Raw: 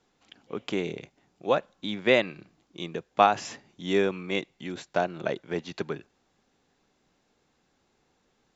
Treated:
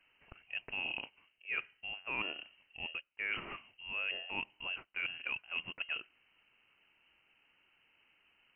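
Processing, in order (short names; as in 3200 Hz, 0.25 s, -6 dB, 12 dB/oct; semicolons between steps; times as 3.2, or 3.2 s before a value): reverse; compressor 10:1, threshold -35 dBFS, peak gain reduction 22 dB; reverse; inverted band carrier 3000 Hz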